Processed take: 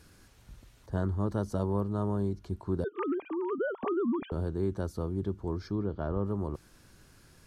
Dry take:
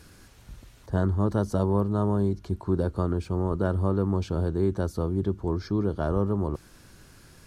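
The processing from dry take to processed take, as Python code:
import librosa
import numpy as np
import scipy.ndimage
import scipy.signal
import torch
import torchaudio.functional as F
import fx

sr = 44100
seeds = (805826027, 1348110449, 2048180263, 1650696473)

y = fx.sine_speech(x, sr, at=(2.84, 4.32))
y = fx.air_absorb(y, sr, metres=190.0, at=(5.75, 6.25))
y = F.gain(torch.from_numpy(y), -6.0).numpy()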